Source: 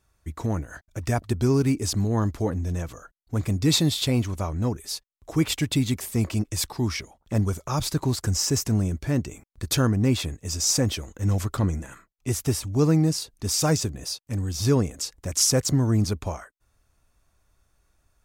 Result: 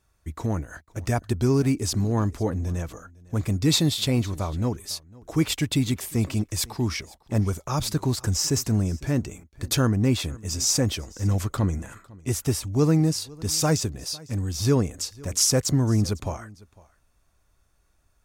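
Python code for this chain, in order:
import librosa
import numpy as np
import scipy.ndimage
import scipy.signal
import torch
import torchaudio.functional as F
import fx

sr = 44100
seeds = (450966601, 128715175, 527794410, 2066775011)

y = x + 10.0 ** (-23.0 / 20.0) * np.pad(x, (int(503 * sr / 1000.0), 0))[:len(x)]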